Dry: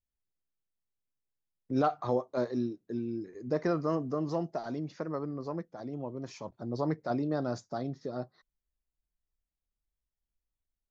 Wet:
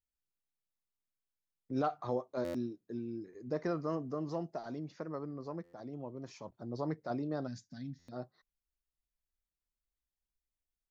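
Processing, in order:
gain on a spectral selection 0:07.47–0:08.12, 290–1,500 Hz −22 dB
buffer that repeats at 0:02.44/0:05.63/0:07.98, samples 512, times 8
level −5.5 dB

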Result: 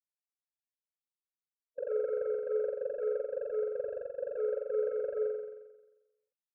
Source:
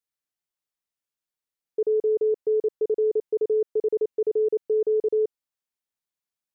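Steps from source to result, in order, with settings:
spectral dynamics exaggerated over time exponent 3
Butterworth low-pass 630 Hz 72 dB per octave
parametric band 380 Hz −10.5 dB 1.5 octaves
formants moved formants +3 semitones
soft clipping −30 dBFS, distortion −21 dB
flutter between parallel walls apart 7.6 metres, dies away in 1.1 s
level +2 dB

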